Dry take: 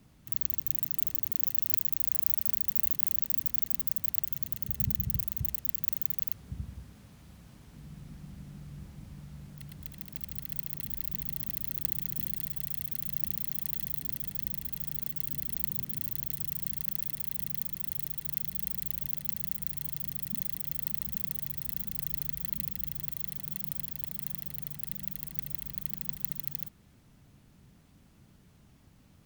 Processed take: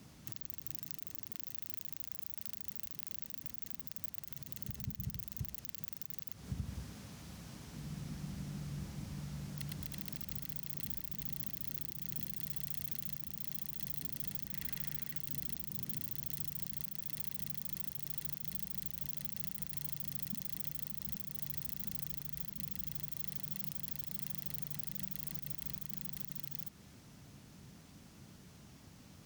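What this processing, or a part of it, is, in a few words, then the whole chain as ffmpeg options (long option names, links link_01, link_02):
broadcast voice chain: -filter_complex "[0:a]highpass=frequency=100:poles=1,deesser=0.35,acompressor=threshold=-39dB:ratio=4,equalizer=frequency=5700:width_type=o:width=0.89:gain=5.5,alimiter=level_in=1dB:limit=-24dB:level=0:latency=1:release=69,volume=-1dB,asettb=1/sr,asplit=3[link_01][link_02][link_03];[link_01]atrim=end=14.474[link_04];[link_02]atrim=start=14.47:end=15.19,asetpts=PTS-STARTPTS,afade=type=in:duration=0.004:curve=qsin,afade=type=out:start_time=0.716:duration=0.004:curve=qsin,equalizer=frequency=1900:width_type=o:width=1:gain=8[link_05];[link_03]atrim=start=15.186[link_06];[link_04][link_05]acrossfade=duration=0.004:curve1=hsin:curve2=qsin[link_07];[link_07][link_06]acrossfade=duration=0.004:curve1=qsin:curve2=hsin,volume=4.5dB"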